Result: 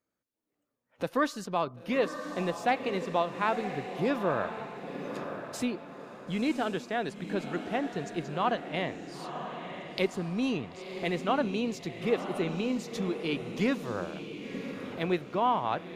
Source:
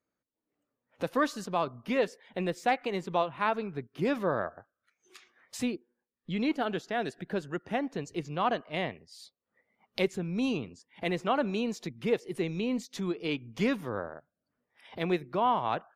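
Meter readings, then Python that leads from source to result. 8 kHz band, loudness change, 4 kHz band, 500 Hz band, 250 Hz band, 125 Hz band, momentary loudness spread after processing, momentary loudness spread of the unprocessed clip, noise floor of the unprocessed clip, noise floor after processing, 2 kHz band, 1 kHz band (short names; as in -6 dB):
+1.0 dB, 0.0 dB, +0.5 dB, +0.5 dB, +0.5 dB, +0.5 dB, 10 LU, 9 LU, under -85 dBFS, -83 dBFS, +0.5 dB, +0.5 dB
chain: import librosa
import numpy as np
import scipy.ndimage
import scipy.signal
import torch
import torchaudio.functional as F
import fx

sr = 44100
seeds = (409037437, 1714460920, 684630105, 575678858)

y = fx.echo_diffused(x, sr, ms=998, feedback_pct=41, wet_db=-8)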